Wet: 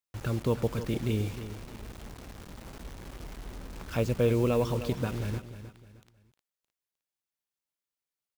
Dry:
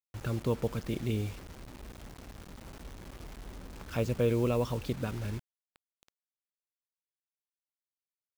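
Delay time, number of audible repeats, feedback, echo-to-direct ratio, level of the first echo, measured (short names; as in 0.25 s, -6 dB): 0.308 s, 3, 34%, -11.5 dB, -12.0 dB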